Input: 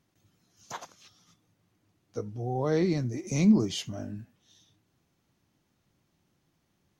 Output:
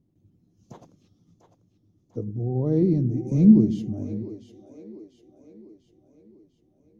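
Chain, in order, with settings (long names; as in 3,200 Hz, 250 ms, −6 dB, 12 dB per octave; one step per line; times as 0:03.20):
drawn EQ curve 310 Hz 0 dB, 1,500 Hz −27 dB, 2,600 Hz −24 dB
echo with a time of its own for lows and highs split 330 Hz, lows 101 ms, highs 696 ms, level −11 dB
level +7 dB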